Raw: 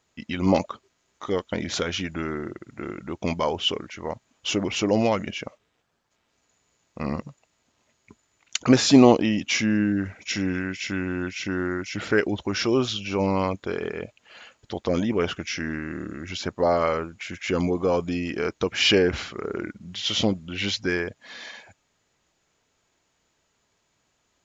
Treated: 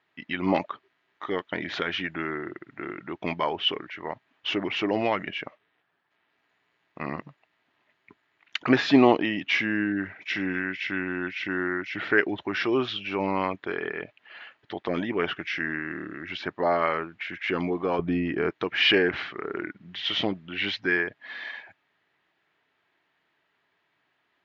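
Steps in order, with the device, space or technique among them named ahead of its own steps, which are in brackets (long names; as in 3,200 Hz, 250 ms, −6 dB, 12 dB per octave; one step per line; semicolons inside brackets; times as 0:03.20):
kitchen radio (loudspeaker in its box 190–3,500 Hz, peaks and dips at 220 Hz −8 dB, 510 Hz −8 dB, 1,800 Hz +7 dB)
0:17.99–0:18.50: spectral tilt −3 dB per octave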